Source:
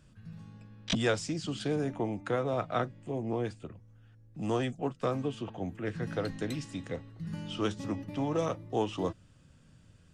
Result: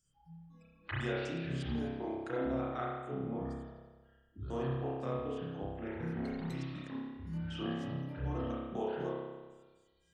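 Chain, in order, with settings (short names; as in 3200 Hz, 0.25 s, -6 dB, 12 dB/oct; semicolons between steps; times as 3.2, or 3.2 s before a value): trilling pitch shifter -11.5 st, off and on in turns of 0.125 s; low shelf 220 Hz +6 dB; notches 50/100/150/200/250/300 Hz; compressor 2:1, threshold -48 dBFS, peak gain reduction 14 dB; spectral noise reduction 26 dB; spring tank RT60 1.3 s, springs 30 ms, chirp 60 ms, DRR -7 dB; gain -1.5 dB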